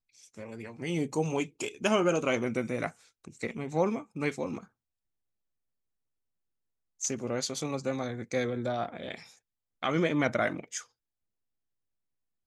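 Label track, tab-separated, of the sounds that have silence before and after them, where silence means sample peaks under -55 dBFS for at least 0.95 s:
7.000000	10.860000	sound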